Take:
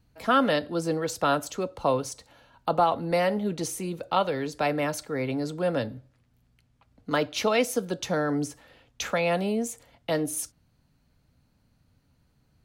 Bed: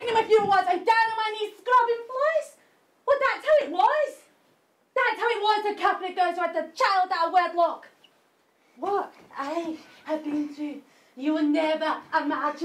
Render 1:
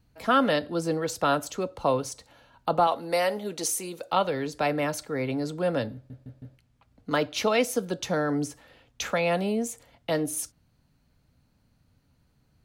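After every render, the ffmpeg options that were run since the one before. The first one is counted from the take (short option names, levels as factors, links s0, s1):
-filter_complex "[0:a]asettb=1/sr,asplit=3[s0][s1][s2];[s0]atrim=end=2.874[s3];[s1]atrim=start=2.87:end=4.13,asetpts=PTS-STARTPTS,afade=t=in:d=0.004:c=qsin,afade=t=out:st=1.256:d=0.004:c=qsin,bass=f=250:g=-13,treble=f=4000:g=7[s4];[s2]atrim=start=4.126[s5];[s3][s4]acrossfade=d=0.004:c1=hsin:c2=qsin[s6];[s6][s5]acrossfade=d=0.004:c1=qsin:c2=hsin,asplit=5[s7][s8][s9][s10][s11];[s7]atrim=end=6.102[s12];[s8]atrim=start=5.938:end=6.102[s13];[s9]atrim=start=5.938:end=6.102[s14];[s10]atrim=start=5.938:end=6.102[s15];[s11]atrim=start=6.578[s16];[s12][s13]acrossfade=d=0.004:c1=hsin:c2=hsin[s17];[s17][s14]acrossfade=d=0.004:c1=hsin:c2=hsin[s18];[s18][s15]acrossfade=d=0.004:c1=hsin:c2=hsin[s19];[s19][s16]acrossfade=d=0.004:c1=hsin:c2=hsin"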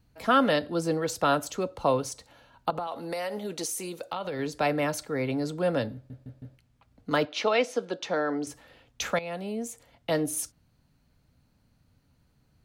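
-filter_complex "[0:a]asettb=1/sr,asplit=3[s0][s1][s2];[s0]atrim=end=2.704[s3];[s1]atrim=start=2.7:end=4.39,asetpts=PTS-STARTPTS,afade=t=in:d=0.004:c=qsin,afade=t=out:st=1.686:d=0.004:c=qsin,acompressor=threshold=0.0398:ratio=16:attack=3.2:release=140:knee=1:detection=peak[s4];[s2]atrim=start=4.386[s5];[s3][s4]acrossfade=d=0.004:c1=hsin:c2=qsin[s6];[s6][s5]acrossfade=d=0.004:c1=qsin:c2=hsin,asettb=1/sr,asplit=3[s7][s8][s9];[s7]atrim=end=7.254[s10];[s8]atrim=start=7.25:end=8.47,asetpts=PTS-STARTPTS,afade=t=in:d=0.004:c=qsin,afade=t=out:st=1.216:d=0.004:c=qsin,highpass=310,lowpass=4600[s11];[s9]atrim=start=8.466[s12];[s10][s11]acrossfade=d=0.004:c1=hsin:c2=qsin[s13];[s13][s12]acrossfade=d=0.004:c1=qsin:c2=hsin,asplit=2[s14][s15];[s14]atrim=end=9.19,asetpts=PTS-STARTPTS,afade=t=out:st=9.186:d=0.004:c=hsin:silence=0.199526[s16];[s15]atrim=start=9.19,asetpts=PTS-STARTPTS,afade=t=in:d=0.93:silence=0.199526[s17];[s16][s17]concat=n=2:v=0:a=1"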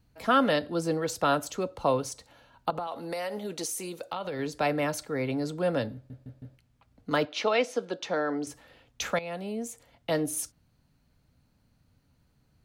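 -af "volume=0.891"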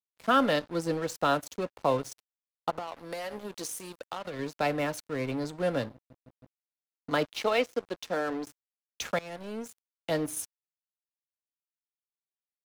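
-af "aeval=exprs='sgn(val(0))*max(abs(val(0))-0.01,0)':c=same"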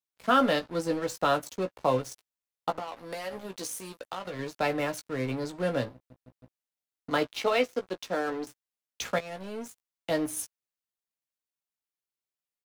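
-filter_complex "[0:a]asplit=2[s0][s1];[s1]adelay=16,volume=0.447[s2];[s0][s2]amix=inputs=2:normalize=0"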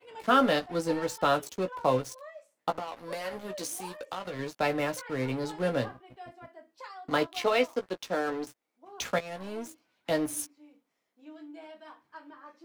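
-filter_complex "[1:a]volume=0.0708[s0];[0:a][s0]amix=inputs=2:normalize=0"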